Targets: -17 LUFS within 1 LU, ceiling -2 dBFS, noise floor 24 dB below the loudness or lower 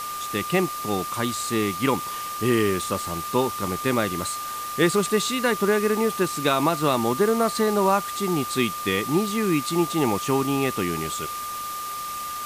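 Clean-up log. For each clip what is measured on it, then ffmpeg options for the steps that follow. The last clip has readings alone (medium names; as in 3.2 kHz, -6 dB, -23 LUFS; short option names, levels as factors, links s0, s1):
steady tone 1.2 kHz; tone level -30 dBFS; noise floor -32 dBFS; noise floor target -48 dBFS; loudness -24.0 LUFS; peak level -8.0 dBFS; loudness target -17.0 LUFS
-> -af "bandreject=f=1200:w=30"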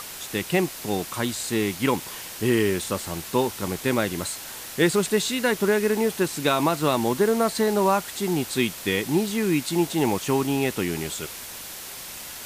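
steady tone not found; noise floor -38 dBFS; noise floor target -49 dBFS
-> -af "afftdn=nr=11:nf=-38"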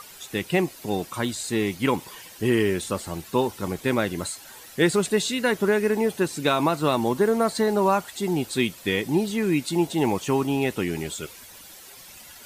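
noise floor -46 dBFS; noise floor target -49 dBFS
-> -af "afftdn=nr=6:nf=-46"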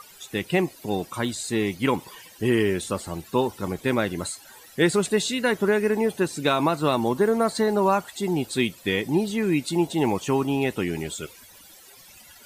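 noise floor -49 dBFS; loudness -24.5 LUFS; peak level -8.5 dBFS; loudness target -17.0 LUFS
-> -af "volume=2.37,alimiter=limit=0.794:level=0:latency=1"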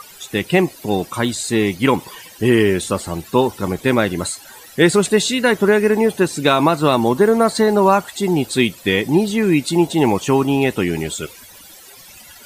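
loudness -17.0 LUFS; peak level -2.0 dBFS; noise floor -42 dBFS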